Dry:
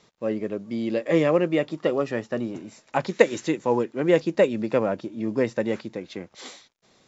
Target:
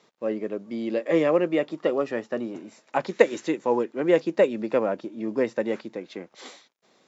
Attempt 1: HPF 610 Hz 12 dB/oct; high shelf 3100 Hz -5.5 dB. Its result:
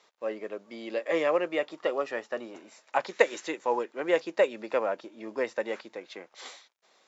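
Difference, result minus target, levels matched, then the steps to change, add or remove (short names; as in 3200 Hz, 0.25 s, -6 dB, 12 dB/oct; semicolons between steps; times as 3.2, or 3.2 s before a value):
250 Hz band -6.0 dB
change: HPF 230 Hz 12 dB/oct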